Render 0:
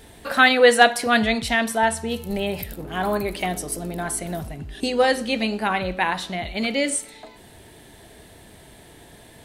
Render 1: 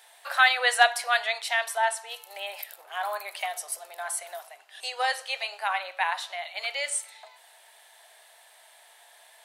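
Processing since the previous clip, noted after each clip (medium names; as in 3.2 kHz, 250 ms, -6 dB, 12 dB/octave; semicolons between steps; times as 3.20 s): steep high-pass 660 Hz 36 dB/octave; trim -4 dB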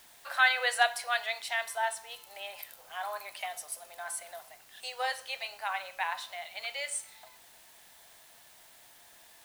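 feedback comb 510 Hz, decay 0.5 s, mix 60%; in parallel at -9.5 dB: word length cut 8-bit, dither triangular; on the sum: trim -1 dB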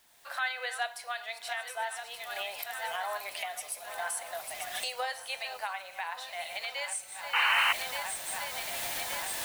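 backward echo that repeats 587 ms, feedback 65%, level -13 dB; recorder AGC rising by 22 dB/s; painted sound noise, 7.33–7.73 s, 790–3100 Hz -17 dBFS; trim -8.5 dB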